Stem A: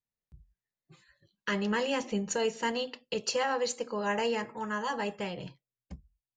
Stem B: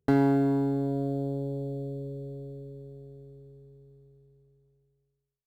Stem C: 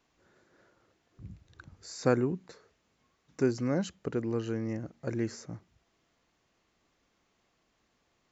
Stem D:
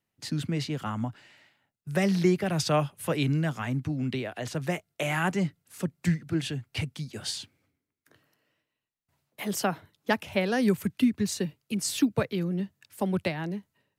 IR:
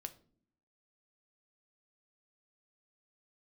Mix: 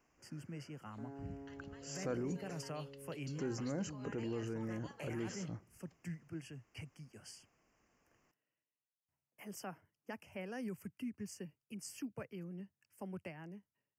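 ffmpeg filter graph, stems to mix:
-filter_complex "[0:a]highpass=f=1.5k:p=1,acompressor=threshold=-42dB:ratio=6,volume=-14dB,asplit=2[a][b];[b]volume=-4dB[c];[1:a]lowpass=1.6k,equalizer=f=79:t=o:w=2.4:g=-13,adelay=900,volume=-11dB[d];[2:a]volume=-2.5dB,asplit=2[e][f];[f]volume=-13.5dB[g];[3:a]volume=-17.5dB[h];[a][d]amix=inputs=2:normalize=0,alimiter=level_in=20.5dB:limit=-24dB:level=0:latency=1:release=371,volume=-20.5dB,volume=0dB[i];[e][h]amix=inputs=2:normalize=0,asuperstop=centerf=3800:order=8:qfactor=2.3,alimiter=level_in=11dB:limit=-24dB:level=0:latency=1:release=19,volume=-11dB,volume=0dB[j];[4:a]atrim=start_sample=2205[k];[c][g]amix=inputs=2:normalize=0[l];[l][k]afir=irnorm=-1:irlink=0[m];[i][j][m]amix=inputs=3:normalize=0"

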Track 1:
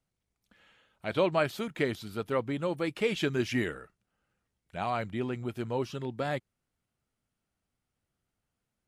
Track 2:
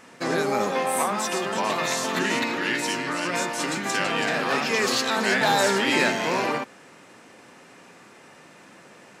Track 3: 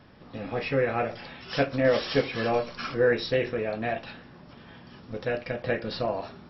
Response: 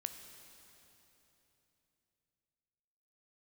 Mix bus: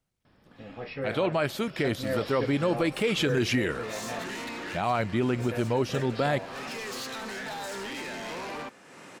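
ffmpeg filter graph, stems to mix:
-filter_complex "[0:a]dynaudnorm=f=280:g=13:m=5.5dB,volume=1.5dB,asplit=3[a][b][c];[b]volume=-16dB[d];[1:a]acompressor=mode=upward:threshold=-32dB:ratio=2.5,alimiter=limit=-14.5dB:level=0:latency=1:release=140,asoftclip=type=tanh:threshold=-28.5dB,adelay=2050,volume=-5dB[e];[2:a]adelay=250,volume=-8.5dB[f];[c]apad=whole_len=496154[g];[e][g]sidechaincompress=threshold=-36dB:ratio=4:attack=41:release=265[h];[3:a]atrim=start_sample=2205[i];[d][i]afir=irnorm=-1:irlink=0[j];[a][h][f][j]amix=inputs=4:normalize=0,alimiter=limit=-17dB:level=0:latency=1:release=27"

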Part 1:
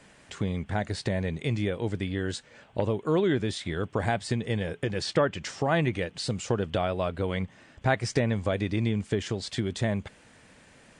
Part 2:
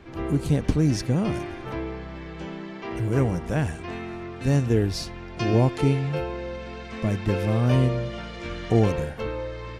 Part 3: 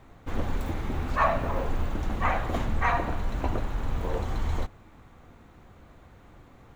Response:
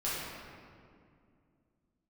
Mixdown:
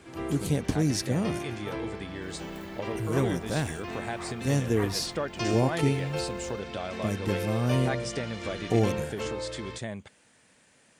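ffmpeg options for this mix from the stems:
-filter_complex "[0:a]volume=-7.5dB,asplit=2[a][b];[1:a]volume=-3dB[c];[2:a]adelay=1950,volume=-12.5dB[d];[b]apad=whole_len=383898[e];[d][e]sidechaincompress=threshold=-36dB:ratio=8:attack=16:release=336[f];[a][c][f]amix=inputs=3:normalize=0,highpass=f=130:p=1,highshelf=f=6.3k:g=11"

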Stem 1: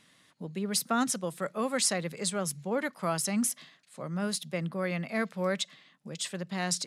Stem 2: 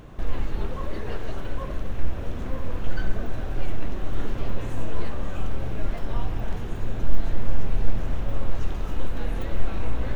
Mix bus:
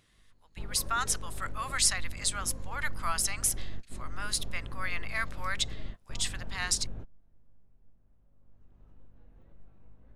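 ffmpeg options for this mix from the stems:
-filter_complex "[0:a]highpass=f=1k:w=0.5412,highpass=f=1k:w=1.3066,dynaudnorm=f=490:g=3:m=10dB,volume=-7dB,asplit=2[a][b];[1:a]highshelf=f=2.1k:g=-11.5,acompressor=mode=upward:threshold=-16dB:ratio=2.5,aeval=exprs='val(0)+0.0398*(sin(2*PI*50*n/s)+sin(2*PI*2*50*n/s)/2+sin(2*PI*3*50*n/s)/3+sin(2*PI*4*50*n/s)/4+sin(2*PI*5*50*n/s)/5)':c=same,volume=-5.5dB,afade=t=in:st=8.37:d=0.47:silence=0.334965[c];[b]apad=whole_len=448021[d];[c][d]sidechaingate=range=-27dB:threshold=-57dB:ratio=16:detection=peak[e];[a][e]amix=inputs=2:normalize=0"

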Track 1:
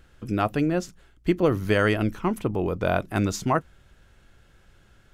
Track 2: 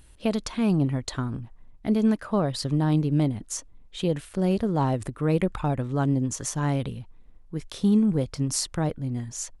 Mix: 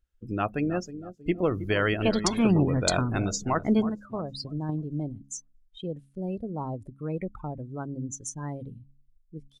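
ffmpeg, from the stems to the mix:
-filter_complex "[0:a]volume=-4.5dB,asplit=3[a][b][c];[b]volume=-12.5dB[d];[1:a]adelay=1800,volume=1dB[e];[c]apad=whole_len=502783[f];[e][f]sidechaingate=range=-10dB:threshold=-54dB:ratio=16:detection=peak[g];[d]aecho=0:1:318|636|954|1272|1590|1908|2226|2544:1|0.52|0.27|0.141|0.0731|0.038|0.0198|0.0103[h];[a][g][h]amix=inputs=3:normalize=0,afftdn=nr=29:nf=-38,highshelf=f=3.5k:g=11.5,bandreject=f=68.69:t=h:w=4,bandreject=f=137.38:t=h:w=4,bandreject=f=206.07:t=h:w=4,bandreject=f=274.76:t=h:w=4"

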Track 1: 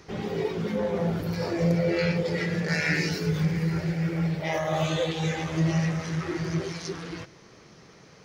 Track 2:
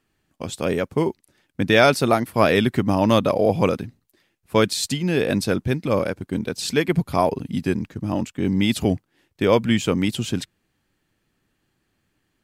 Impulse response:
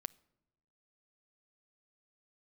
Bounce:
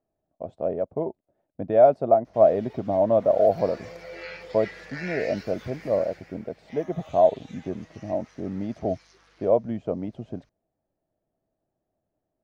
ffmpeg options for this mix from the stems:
-filter_complex "[0:a]highpass=710,aeval=exprs='val(0)+0.00316*(sin(2*PI*50*n/s)+sin(2*PI*2*50*n/s)/2+sin(2*PI*3*50*n/s)/3+sin(2*PI*4*50*n/s)/4+sin(2*PI*5*50*n/s)/5)':c=same,adelay=2250,volume=-7dB,afade=t=in:st=3.17:d=0.27:silence=0.446684,afade=t=out:st=5.93:d=0.49:silence=0.298538[a];[1:a]crystalizer=i=4:c=0,lowpass=f=650:t=q:w=7.7,volume=-12dB[b];[a][b]amix=inputs=2:normalize=0,acrossover=split=3800[c][d];[d]acompressor=threshold=-54dB:ratio=4:attack=1:release=60[e];[c][e]amix=inputs=2:normalize=0"

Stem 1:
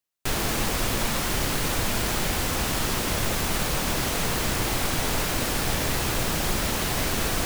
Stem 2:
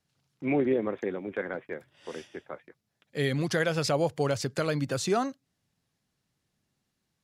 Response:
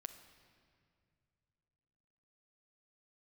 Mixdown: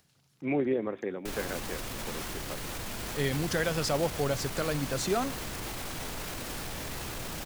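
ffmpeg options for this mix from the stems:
-filter_complex "[0:a]alimiter=limit=-22.5dB:level=0:latency=1:release=27,adelay=1000,volume=-6dB[a];[1:a]highshelf=f=7.6k:g=5.5,volume=-4dB,asplit=2[b][c];[c]volume=-11dB[d];[2:a]atrim=start_sample=2205[e];[d][e]afir=irnorm=-1:irlink=0[f];[a][b][f]amix=inputs=3:normalize=0,acompressor=mode=upward:threshold=-58dB:ratio=2.5"

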